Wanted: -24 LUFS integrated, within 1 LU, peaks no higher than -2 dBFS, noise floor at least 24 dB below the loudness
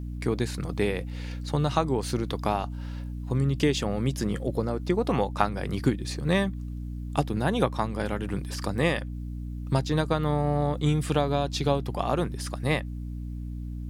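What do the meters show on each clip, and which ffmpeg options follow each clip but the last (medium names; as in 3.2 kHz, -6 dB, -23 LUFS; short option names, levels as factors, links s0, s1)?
hum 60 Hz; highest harmonic 300 Hz; hum level -32 dBFS; loudness -28.0 LUFS; peak level -4.5 dBFS; loudness target -24.0 LUFS
-> -af "bandreject=f=60:t=h:w=4,bandreject=f=120:t=h:w=4,bandreject=f=180:t=h:w=4,bandreject=f=240:t=h:w=4,bandreject=f=300:t=h:w=4"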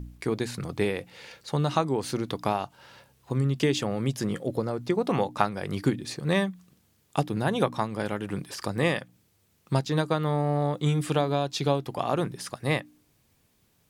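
hum not found; loudness -28.5 LUFS; peak level -4.0 dBFS; loudness target -24.0 LUFS
-> -af "volume=1.68,alimiter=limit=0.794:level=0:latency=1"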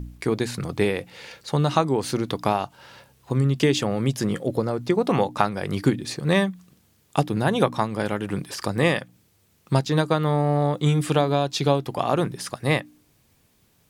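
loudness -24.0 LUFS; peak level -2.0 dBFS; noise floor -63 dBFS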